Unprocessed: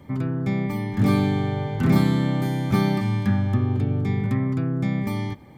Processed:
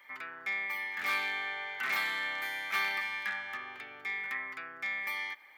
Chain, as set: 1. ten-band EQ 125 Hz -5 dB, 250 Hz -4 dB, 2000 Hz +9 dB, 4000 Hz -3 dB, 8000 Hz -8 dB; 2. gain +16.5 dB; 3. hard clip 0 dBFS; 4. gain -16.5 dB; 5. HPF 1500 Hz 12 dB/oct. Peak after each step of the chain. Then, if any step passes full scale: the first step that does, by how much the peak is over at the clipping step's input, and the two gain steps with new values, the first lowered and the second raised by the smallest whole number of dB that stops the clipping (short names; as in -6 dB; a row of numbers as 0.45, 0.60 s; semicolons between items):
-9.0, +7.5, 0.0, -16.5, -19.0 dBFS; step 2, 7.5 dB; step 2 +8.5 dB, step 4 -8.5 dB